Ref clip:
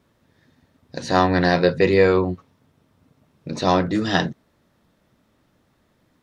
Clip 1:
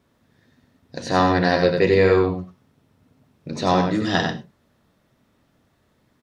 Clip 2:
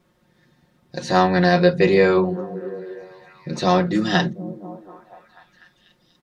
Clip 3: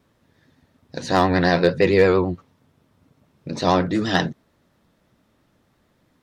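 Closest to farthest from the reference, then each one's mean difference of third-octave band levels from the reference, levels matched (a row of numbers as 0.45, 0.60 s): 3, 2, 1; 1.0, 2.0, 3.5 dB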